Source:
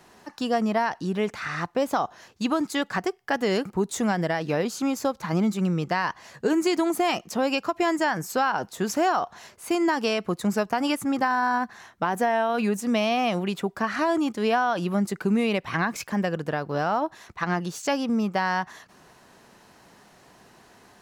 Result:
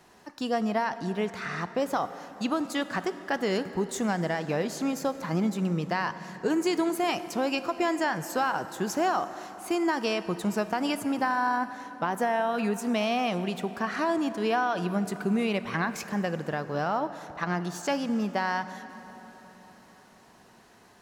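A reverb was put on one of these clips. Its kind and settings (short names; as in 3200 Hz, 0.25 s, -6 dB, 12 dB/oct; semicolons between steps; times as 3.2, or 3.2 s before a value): plate-style reverb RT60 4.4 s, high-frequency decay 0.65×, DRR 11.5 dB; gain -3.5 dB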